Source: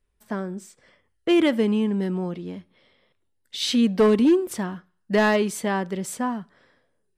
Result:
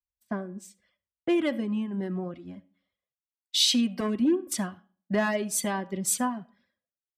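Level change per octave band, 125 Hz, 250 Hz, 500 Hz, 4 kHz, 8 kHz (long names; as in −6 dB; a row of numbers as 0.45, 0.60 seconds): −6.0, −6.0, −8.5, +2.5, +6.0 decibels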